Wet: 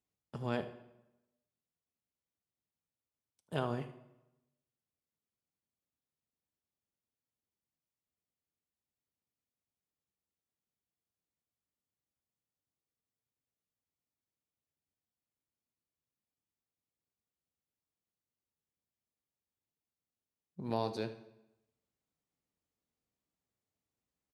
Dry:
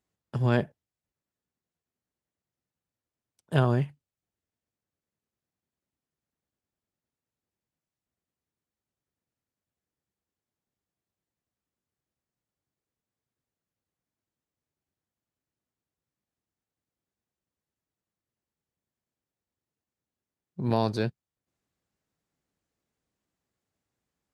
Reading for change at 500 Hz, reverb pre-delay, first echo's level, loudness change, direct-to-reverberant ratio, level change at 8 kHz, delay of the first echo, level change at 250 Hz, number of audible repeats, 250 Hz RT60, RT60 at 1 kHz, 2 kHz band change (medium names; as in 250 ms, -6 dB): -8.5 dB, 3 ms, -16.0 dB, -11.0 dB, 9.5 dB, no reading, 78 ms, -11.0 dB, 1, 0.95 s, 0.95 s, -10.5 dB